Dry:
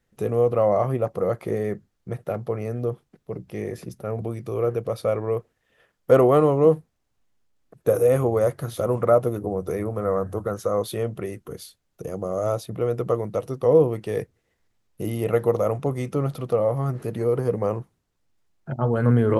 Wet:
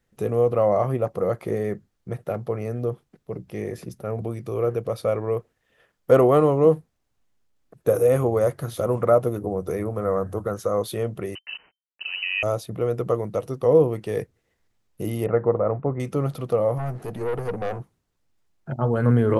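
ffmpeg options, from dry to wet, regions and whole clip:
-filter_complex "[0:a]asettb=1/sr,asplit=3[a][b][c];[a]atrim=end=11.354[d];[b]atrim=start=11.35:end=12.43,asetpts=PTS-STARTPTS,afade=t=in:d=0.004:c=qsin,afade=t=out:st=1.076:d=0.004:c=qsin,acrusher=bits=6:mix=0:aa=0.5,lowpass=f=2.6k:t=q:w=0.5098,lowpass=f=2.6k:t=q:w=0.6013,lowpass=f=2.6k:t=q:w=0.9,lowpass=f=2.6k:t=q:w=2.563,afreqshift=-3100[e];[c]atrim=start=12.426[f];[d][e]acrossfade=d=0.004:c1=hsin:c2=qsin[g];[g][f]acrossfade=d=0.004:c1=qsin:c2=hsin,asettb=1/sr,asplit=3[h][i][j];[h]atrim=end=15.264[k];[i]atrim=start=15.26:end=16,asetpts=PTS-STARTPTS,afade=t=in:d=0.004:c=qsin,afade=t=out:st=0.736:d=0.004:c=qsin,agate=range=-33dB:threshold=-34dB:ratio=3:release=100:detection=peak,lowpass=f=1.8k:w=0.5412,lowpass=f=1.8k:w=1.3066[l];[j]atrim=start=15.996[m];[k][l]acrossfade=d=0.004:c1=hsin:c2=qsin[n];[n][m]acrossfade=d=0.004:c1=qsin:c2=hsin,asettb=1/sr,asplit=3[o][p][q];[o]atrim=end=16.784[r];[p]atrim=start=16.78:end=17.8,asetpts=PTS-STARTPTS,afade=t=in:d=0.004:c=qsin,afade=t=out:st=1.016:d=0.004:c=qsin,equalizer=f=730:w=4.5:g=11.5,aeval=exprs='(tanh(12.6*val(0)+0.5)-tanh(0.5))/12.6':c=same[s];[q]atrim=start=17.796[t];[r][s]acrossfade=d=0.004:c1=hsin:c2=qsin[u];[u][t]acrossfade=d=0.004:c1=qsin:c2=hsin"

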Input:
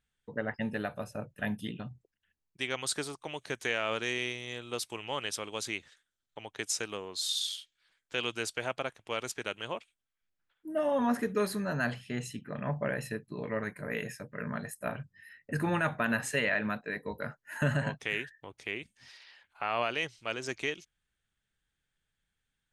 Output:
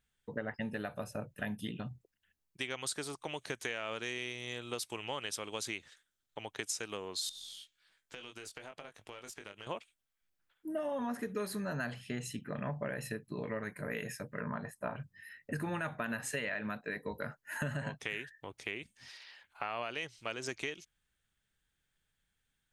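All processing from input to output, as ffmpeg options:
-filter_complex "[0:a]asettb=1/sr,asplit=3[a][b][c];[a]atrim=end=7.294[d];[b]atrim=start=7.29:end=9.67,asetpts=PTS-STARTPTS,afade=t=in:d=0.004:c=qsin,afade=t=out:st=2.376:d=0.004:c=qsin,asplit=2[e][f];[f]adelay=20,volume=-5.5dB[g];[e][g]amix=inputs=2:normalize=0,atrim=end_sample=104958,acompressor=threshold=-44dB:ratio=8:attack=3.2:release=140:knee=1:detection=peak,aeval=exprs='(tanh(28.2*val(0)+0.45)-tanh(0.45))/28.2':c=same[h];[c]atrim=start=9.666[i];[d][h]acrossfade=d=0.004:c1=hsin:c2=qsin[j];[j][i]acrossfade=d=0.004:c1=qsin:c2=hsin,asettb=1/sr,asplit=3[k][l][m];[k]atrim=end=14.404[n];[l]atrim=start=14.4:end=14.96,asetpts=PTS-STARTPTS,afade=t=in:d=0.004:c=qsin,afade=t=out:st=0.556:d=0.004:c=qsin,lowpass=f=1.7k:p=1,equalizer=f=970:t=o:w=0.64:g=8.5[o];[m]atrim=start=14.956[p];[n][o]acrossfade=d=0.004:c1=hsin:c2=qsin[q];[q][p]acrossfade=d=0.004:c1=qsin:c2=hsin,highshelf=f=8.5k:g=4,acompressor=threshold=-36dB:ratio=4,volume=1dB"

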